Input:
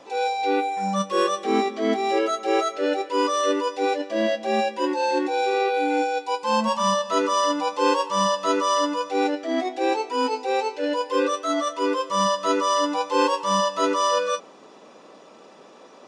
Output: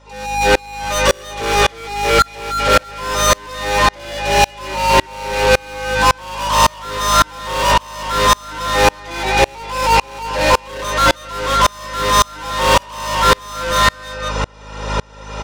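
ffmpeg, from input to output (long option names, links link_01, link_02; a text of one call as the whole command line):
ffmpeg -i in.wav -filter_complex "[0:a]lowshelf=frequency=250:gain=-11.5,aecho=1:1:2.2:0.91,acrossover=split=190|560|4500[link_01][link_02][link_03][link_04];[link_03]aecho=1:1:122|322|347|523|557:0.237|0.668|0.473|0.398|0.112[link_05];[link_01][link_02][link_05][link_04]amix=inputs=4:normalize=0,asplit=2[link_06][link_07];[link_07]highpass=frequency=720:poles=1,volume=34dB,asoftclip=type=tanh:threshold=-5dB[link_08];[link_06][link_08]amix=inputs=2:normalize=0,lowpass=frequency=6500:poles=1,volume=-6dB,aeval=exprs='val(0)+0.1*(sin(2*PI*50*n/s)+sin(2*PI*2*50*n/s)/2+sin(2*PI*3*50*n/s)/3+sin(2*PI*4*50*n/s)/4+sin(2*PI*5*50*n/s)/5)':channel_layout=same,asetrate=45938,aresample=44100,aeval=exprs='val(0)*pow(10,-32*if(lt(mod(-1.8*n/s,1),2*abs(-1.8)/1000),1-mod(-1.8*n/s,1)/(2*abs(-1.8)/1000),(mod(-1.8*n/s,1)-2*abs(-1.8)/1000)/(1-2*abs(-1.8)/1000))/20)':channel_layout=same,volume=3dB" out.wav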